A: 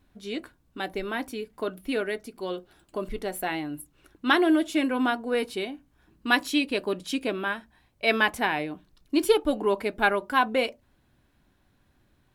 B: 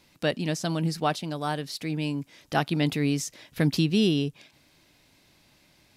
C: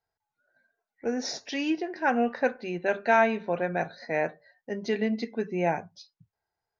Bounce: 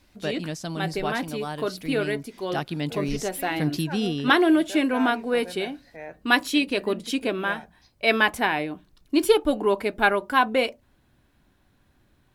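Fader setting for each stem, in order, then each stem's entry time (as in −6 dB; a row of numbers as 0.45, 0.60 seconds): +2.5, −4.0, −12.0 decibels; 0.00, 0.00, 1.85 seconds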